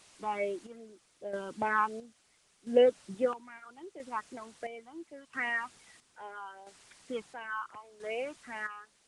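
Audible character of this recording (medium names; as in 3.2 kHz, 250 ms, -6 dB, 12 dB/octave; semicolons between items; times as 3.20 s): phasing stages 8, 2.6 Hz, lowest notch 560–1300 Hz; a quantiser's noise floor 10-bit, dither triangular; chopped level 0.75 Hz, depth 65%, duty 50%; Nellymoser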